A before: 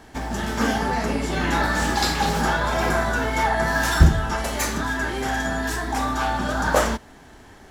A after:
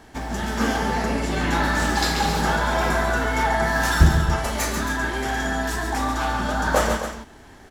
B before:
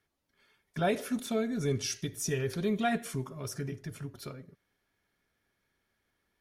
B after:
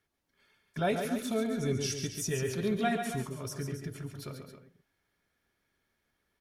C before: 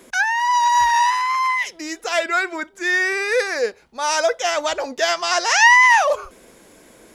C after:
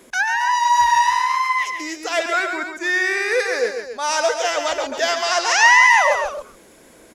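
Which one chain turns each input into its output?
multi-tap delay 111/139/271 ms −18/−7/−11 dB
level −1 dB

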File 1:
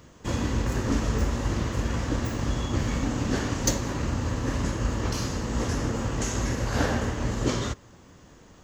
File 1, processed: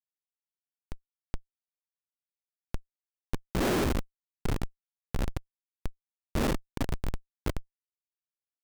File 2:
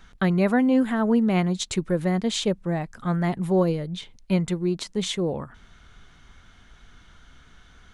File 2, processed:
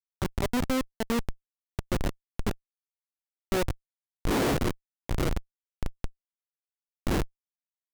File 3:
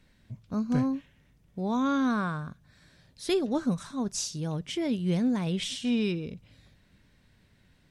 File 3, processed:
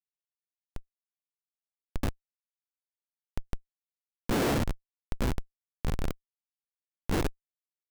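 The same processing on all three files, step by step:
wind on the microphone 390 Hz −23 dBFS
band-pass filter 270–3,700 Hz
comparator with hysteresis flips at −19.5 dBFS

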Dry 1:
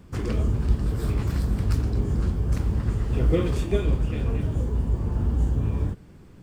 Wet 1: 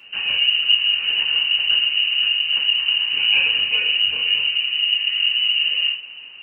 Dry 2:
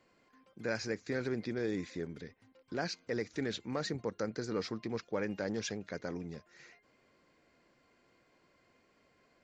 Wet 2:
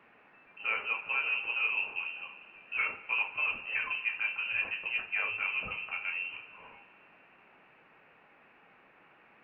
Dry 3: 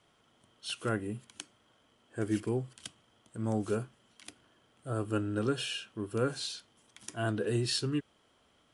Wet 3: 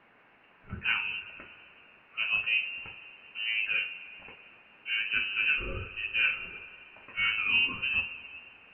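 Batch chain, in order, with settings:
voice inversion scrambler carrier 2,900 Hz
coupled-rooms reverb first 0.29 s, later 2.9 s, from −21 dB, DRR −1.5 dB
noise in a band 150–1,900 Hz −63 dBFS

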